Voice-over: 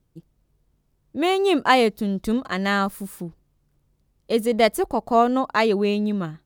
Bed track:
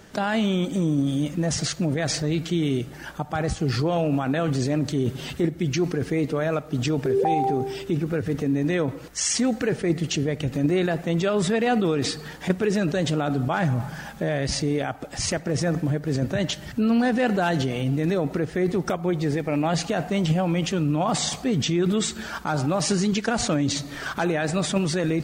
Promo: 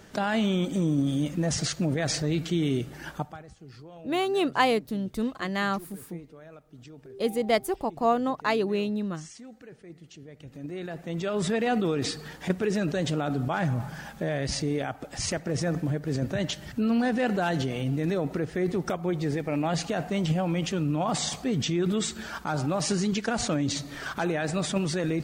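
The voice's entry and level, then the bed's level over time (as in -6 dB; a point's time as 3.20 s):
2.90 s, -6.0 dB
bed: 3.22 s -2.5 dB
3.44 s -23.5 dB
10.14 s -23.5 dB
11.47 s -4 dB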